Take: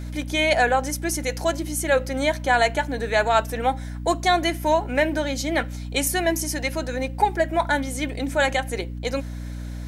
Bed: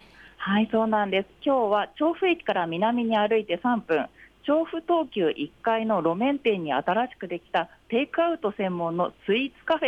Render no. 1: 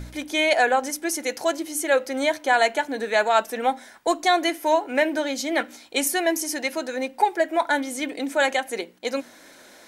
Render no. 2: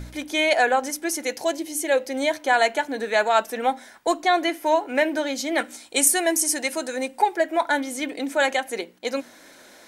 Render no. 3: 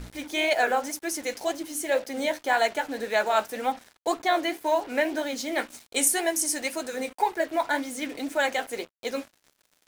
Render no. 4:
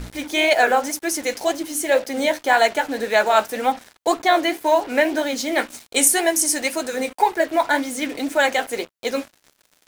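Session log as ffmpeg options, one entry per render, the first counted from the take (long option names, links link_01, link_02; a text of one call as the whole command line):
ffmpeg -i in.wav -af "bandreject=frequency=60:width_type=h:width=4,bandreject=frequency=120:width_type=h:width=4,bandreject=frequency=180:width_type=h:width=4,bandreject=frequency=240:width_type=h:width=4,bandreject=frequency=300:width_type=h:width=4" out.wav
ffmpeg -i in.wav -filter_complex "[0:a]asettb=1/sr,asplit=3[link_01][link_02][link_03];[link_01]atrim=end=1.344[link_04];[link_02]atrim=start=1.34:end=2.31,asetpts=PTS-STARTPTS,afade=type=in:duration=0.004:curve=qsin,afade=type=out:start_time=0.966:duration=0.004:curve=qsin,equalizer=frequency=1300:width=2.9:gain=-9[link_05];[link_03]atrim=start=2.306[link_06];[link_04][link_05]acrossfade=duration=0.004:curve1=hsin:curve2=qsin[link_07];[link_07][link_06]acrossfade=duration=0.004:curve1=qsin:curve2=hsin,asettb=1/sr,asplit=3[link_08][link_09][link_10];[link_08]atrim=end=4.134[link_11];[link_09]atrim=start=4.13:end=4.86,asetpts=PTS-STARTPTS,afade=type=in:duration=0.004:curve=qsin,afade=type=out:start_time=0.726:duration=0.004:curve=qsin,acrossover=split=3900[link_12][link_13];[link_13]acompressor=threshold=-40dB:ratio=4:attack=1:release=60[link_14];[link_12][link_14]amix=inputs=2:normalize=0[link_15];[link_10]atrim=start=4.856[link_16];[link_11][link_15]acrossfade=duration=0.004:curve1=hsin:curve2=qsin[link_17];[link_17][link_16]acrossfade=duration=0.004:curve1=qsin:curve2=hsin,asettb=1/sr,asplit=3[link_18][link_19][link_20];[link_18]atrim=end=5.584[link_21];[link_19]atrim=start=5.58:end=7.19,asetpts=PTS-STARTPTS,afade=type=in:duration=0.004:curve=qsin,afade=type=out:start_time=1.606:duration=0.004:curve=qsin,equalizer=frequency=8700:width_type=o:width=0.72:gain=11[link_22];[link_20]atrim=start=7.186[link_23];[link_21][link_22]acrossfade=duration=0.004:curve1=hsin:curve2=qsin[link_24];[link_24][link_23]acrossfade=duration=0.004:curve1=qsin:curve2=hsin" out.wav
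ffmpeg -i in.wav -af "flanger=delay=4.6:depth=9.3:regen=-59:speed=1.9:shape=sinusoidal,acrusher=bits=6:mix=0:aa=0.5" out.wav
ffmpeg -i in.wav -af "volume=7dB,alimiter=limit=-2dB:level=0:latency=1" out.wav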